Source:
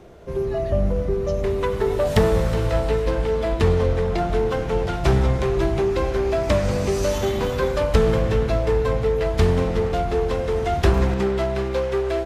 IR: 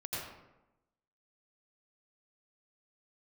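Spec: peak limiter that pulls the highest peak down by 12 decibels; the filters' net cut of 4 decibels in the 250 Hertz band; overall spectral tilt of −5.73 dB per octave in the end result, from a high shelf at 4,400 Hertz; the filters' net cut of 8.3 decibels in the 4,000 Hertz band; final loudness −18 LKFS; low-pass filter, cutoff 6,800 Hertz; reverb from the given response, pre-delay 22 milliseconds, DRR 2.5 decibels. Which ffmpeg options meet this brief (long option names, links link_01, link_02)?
-filter_complex "[0:a]lowpass=6800,equalizer=frequency=250:width_type=o:gain=-6.5,equalizer=frequency=4000:width_type=o:gain=-7.5,highshelf=frequency=4400:gain=-6.5,alimiter=limit=-17dB:level=0:latency=1,asplit=2[link_01][link_02];[1:a]atrim=start_sample=2205,adelay=22[link_03];[link_02][link_03]afir=irnorm=-1:irlink=0,volume=-5dB[link_04];[link_01][link_04]amix=inputs=2:normalize=0,volume=6.5dB"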